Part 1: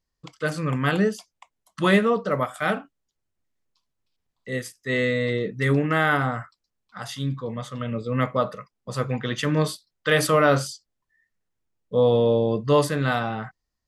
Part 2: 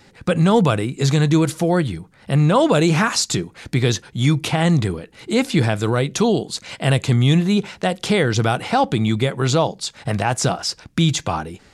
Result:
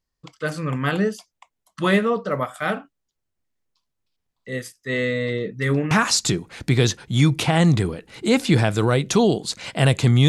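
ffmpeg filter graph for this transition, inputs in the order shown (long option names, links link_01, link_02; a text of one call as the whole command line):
ffmpeg -i cue0.wav -i cue1.wav -filter_complex "[0:a]apad=whole_dur=10.28,atrim=end=10.28,atrim=end=5.912[link_01];[1:a]atrim=start=2.958:end=7.33[link_02];[link_01][link_02]acrossfade=duration=0.004:curve1=hsin:curve2=hsin" out.wav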